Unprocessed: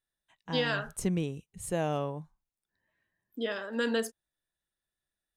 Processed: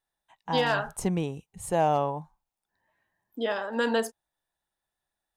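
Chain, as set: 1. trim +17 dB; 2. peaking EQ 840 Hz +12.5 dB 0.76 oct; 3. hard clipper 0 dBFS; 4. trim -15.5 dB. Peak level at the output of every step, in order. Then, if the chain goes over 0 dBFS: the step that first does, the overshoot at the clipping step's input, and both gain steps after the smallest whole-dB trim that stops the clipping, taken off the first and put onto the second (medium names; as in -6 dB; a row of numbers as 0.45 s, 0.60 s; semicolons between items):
-0.5 dBFS, +3.5 dBFS, 0.0 dBFS, -15.5 dBFS; step 2, 3.5 dB; step 1 +13 dB, step 4 -11.5 dB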